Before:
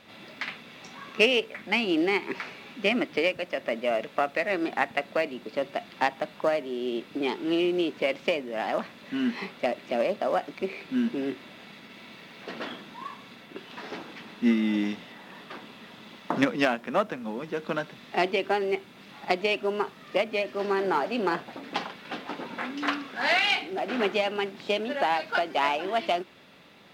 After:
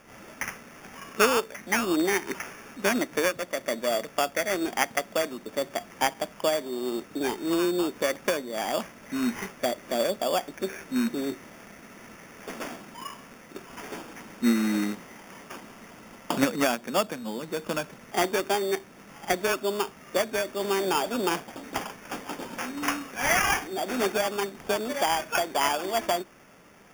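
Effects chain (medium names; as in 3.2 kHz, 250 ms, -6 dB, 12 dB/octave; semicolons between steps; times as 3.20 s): rattle on loud lows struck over -29 dBFS, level -26 dBFS; sample-and-hold 11×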